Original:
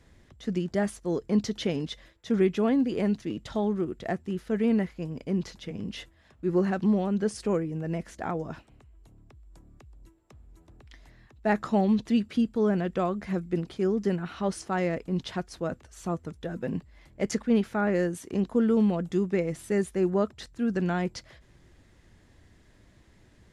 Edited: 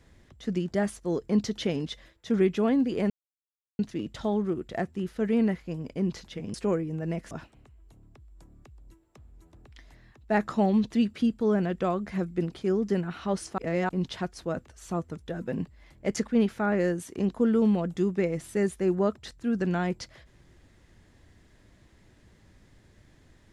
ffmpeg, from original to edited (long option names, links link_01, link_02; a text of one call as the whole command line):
ffmpeg -i in.wav -filter_complex "[0:a]asplit=6[link_01][link_02][link_03][link_04][link_05][link_06];[link_01]atrim=end=3.1,asetpts=PTS-STARTPTS,afade=type=out:start_time=3.096:duration=0.004:curve=hsin,apad=pad_dur=0.69[link_07];[link_02]atrim=start=3.1:end=5.852,asetpts=PTS-STARTPTS,afade=type=in:duration=0.004:curve=hsin[link_08];[link_03]atrim=start=7.358:end=8.132[link_09];[link_04]atrim=start=8.458:end=14.732[link_10];[link_05]atrim=start=14.728:end=15.042,asetpts=PTS-STARTPTS,areverse[link_11];[link_06]atrim=start=15.038[link_12];[link_07][link_08]concat=n=2:v=0:a=1[link_13];[link_13][link_09]acrossfade=duration=0.004:curve1=hsin:curve2=hsin[link_14];[link_14][link_10]acrossfade=duration=0.004:curve1=hsin:curve2=hsin[link_15];[link_15][link_11]acrossfade=duration=0.004:curve1=hsin:curve2=hsin[link_16];[link_16][link_12]acrossfade=duration=0.004:curve1=hsin:curve2=hsin" out.wav